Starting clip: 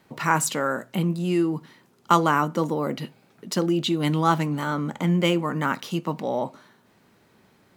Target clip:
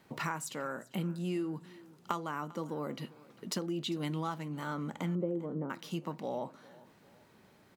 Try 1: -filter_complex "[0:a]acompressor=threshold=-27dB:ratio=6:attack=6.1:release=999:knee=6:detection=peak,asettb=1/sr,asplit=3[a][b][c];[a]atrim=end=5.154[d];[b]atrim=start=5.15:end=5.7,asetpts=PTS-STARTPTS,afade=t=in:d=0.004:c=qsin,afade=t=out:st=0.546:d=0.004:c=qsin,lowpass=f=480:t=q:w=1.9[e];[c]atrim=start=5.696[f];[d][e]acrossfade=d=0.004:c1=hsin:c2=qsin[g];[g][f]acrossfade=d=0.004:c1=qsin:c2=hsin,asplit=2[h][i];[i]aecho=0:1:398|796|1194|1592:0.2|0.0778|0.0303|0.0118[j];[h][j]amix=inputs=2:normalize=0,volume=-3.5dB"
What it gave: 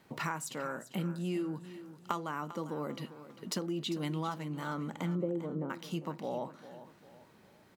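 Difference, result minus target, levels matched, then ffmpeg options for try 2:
echo-to-direct +7 dB
-filter_complex "[0:a]acompressor=threshold=-27dB:ratio=6:attack=6.1:release=999:knee=6:detection=peak,asettb=1/sr,asplit=3[a][b][c];[a]atrim=end=5.154[d];[b]atrim=start=5.15:end=5.7,asetpts=PTS-STARTPTS,afade=t=in:d=0.004:c=qsin,afade=t=out:st=0.546:d=0.004:c=qsin,lowpass=f=480:t=q:w=1.9[e];[c]atrim=start=5.696[f];[d][e]acrossfade=d=0.004:c1=hsin:c2=qsin[g];[g][f]acrossfade=d=0.004:c1=qsin:c2=hsin,asplit=2[h][i];[i]aecho=0:1:398|796|1194:0.0891|0.0348|0.0136[j];[h][j]amix=inputs=2:normalize=0,volume=-3.5dB"

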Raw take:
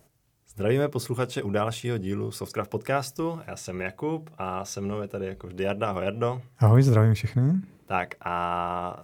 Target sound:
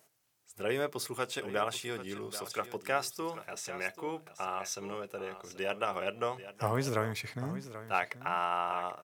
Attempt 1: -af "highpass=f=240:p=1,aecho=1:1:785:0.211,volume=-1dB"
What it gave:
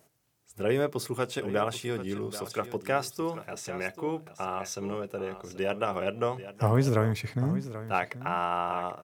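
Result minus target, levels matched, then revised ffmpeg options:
250 Hz band +4.0 dB
-af "highpass=f=910:p=1,aecho=1:1:785:0.211,volume=-1dB"

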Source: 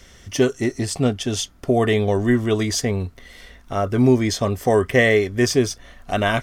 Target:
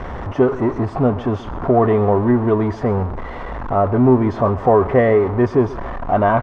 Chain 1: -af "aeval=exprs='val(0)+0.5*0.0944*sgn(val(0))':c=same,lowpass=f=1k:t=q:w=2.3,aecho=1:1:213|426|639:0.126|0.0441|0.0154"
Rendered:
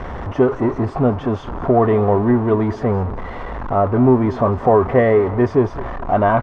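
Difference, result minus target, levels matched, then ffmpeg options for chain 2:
echo 81 ms late
-af "aeval=exprs='val(0)+0.5*0.0944*sgn(val(0))':c=same,lowpass=f=1k:t=q:w=2.3,aecho=1:1:132|264|396:0.126|0.0441|0.0154"

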